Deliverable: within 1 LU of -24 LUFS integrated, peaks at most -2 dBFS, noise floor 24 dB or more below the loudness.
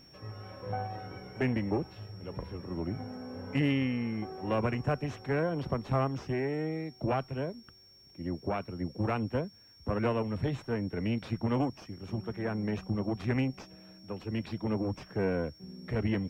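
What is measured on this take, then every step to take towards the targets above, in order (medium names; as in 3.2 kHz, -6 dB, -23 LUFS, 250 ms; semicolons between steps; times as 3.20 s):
steady tone 5.5 kHz; tone level -56 dBFS; loudness -33.5 LUFS; peak level -17.0 dBFS; loudness target -24.0 LUFS
-> band-stop 5.5 kHz, Q 30; trim +9.5 dB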